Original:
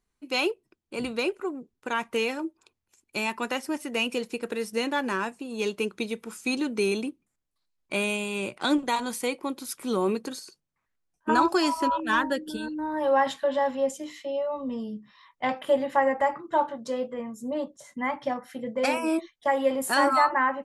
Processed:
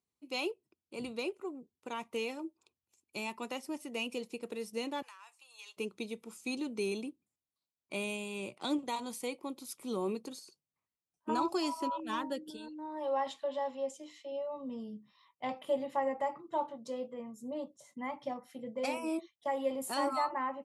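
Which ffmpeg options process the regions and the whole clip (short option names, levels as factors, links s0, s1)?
-filter_complex "[0:a]asettb=1/sr,asplit=3[s0][s1][s2];[s0]atrim=end=5.024[s3];[s1]atrim=start=5.02:end=5.77,asetpts=PTS-STARTPTS,afade=t=in:d=0.004:c=qsin,afade=t=out:st=0.746:d=0.004:c=qsin,highpass=f=1000:w=0.5412,highpass=f=1000:w=1.3066,acompressor=threshold=0.0158:ratio=6:attack=3.2:release=140:knee=1:detection=peak[s4];[s2]atrim=start=5.766[s5];[s3][s4]acrossfade=d=0.004:c1=hsin:c2=qsin[s6];[s6][s5]acrossfade=d=0.004:c1=qsin:c2=hsin,asettb=1/sr,asplit=3[s7][s8][s9];[s7]atrim=end=12.504[s10];[s8]atrim=start=12.5:end=14.32,asetpts=PTS-STARTPTS,afade=t=in:d=0.004:c=qsin,afade=t=out:st=1.816:d=0.004:c=qsin,lowpass=8400,equalizer=f=150:t=o:w=1.4:g=-11[s11];[s9]atrim=start=14.316[s12];[s10][s11]acrossfade=d=0.004:c1=hsin:c2=qsin[s13];[s13][s12]acrossfade=d=0.004:c1=qsin:c2=hsin,highpass=f=72:w=0.5412,highpass=f=72:w=1.3066,equalizer=f=1600:t=o:w=0.46:g=-12.5,volume=0.355"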